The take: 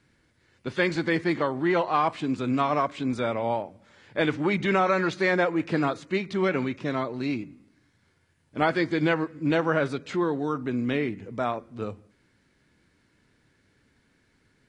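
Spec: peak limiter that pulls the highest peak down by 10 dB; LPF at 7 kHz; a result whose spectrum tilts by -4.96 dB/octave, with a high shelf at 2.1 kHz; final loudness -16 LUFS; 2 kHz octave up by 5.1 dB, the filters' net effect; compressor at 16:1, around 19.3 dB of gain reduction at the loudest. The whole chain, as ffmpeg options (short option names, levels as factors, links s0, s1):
-af "lowpass=7000,equalizer=f=2000:t=o:g=9,highshelf=f=2100:g=-5,acompressor=threshold=0.0158:ratio=16,volume=23.7,alimiter=limit=0.562:level=0:latency=1"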